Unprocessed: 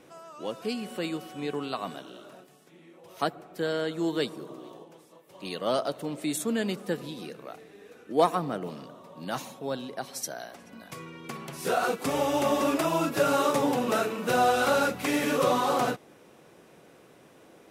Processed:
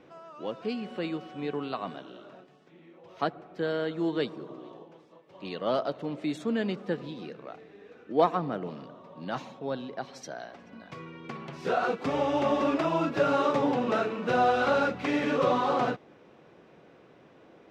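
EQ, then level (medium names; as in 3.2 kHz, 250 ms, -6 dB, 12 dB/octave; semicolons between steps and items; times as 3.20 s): distance through air 190 m; 0.0 dB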